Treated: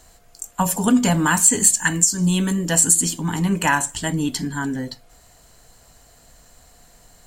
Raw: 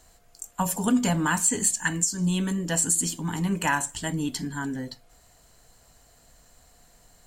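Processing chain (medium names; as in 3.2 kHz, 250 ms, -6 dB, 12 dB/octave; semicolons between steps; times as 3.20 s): 1.11–2.94 s: treble shelf 8.1 kHz +5.5 dB; trim +6 dB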